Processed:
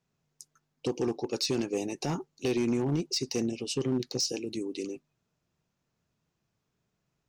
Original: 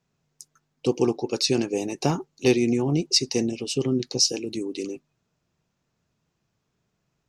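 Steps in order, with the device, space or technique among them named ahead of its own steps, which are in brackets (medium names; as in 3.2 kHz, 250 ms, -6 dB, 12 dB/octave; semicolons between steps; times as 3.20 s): limiter into clipper (peak limiter -14 dBFS, peak gain reduction 7.5 dB; hard clipper -17.5 dBFS, distortion -20 dB); trim -4.5 dB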